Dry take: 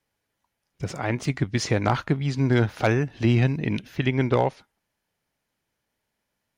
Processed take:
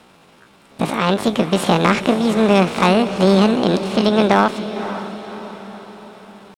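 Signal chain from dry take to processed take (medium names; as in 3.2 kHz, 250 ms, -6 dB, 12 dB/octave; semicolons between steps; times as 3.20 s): spectral levelling over time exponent 0.6; treble shelf 4.4 kHz -10.5 dB; pitch shift +8.5 st; on a send: echo that smears into a reverb 538 ms, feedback 50%, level -11.5 dB; on the sum: trim +5 dB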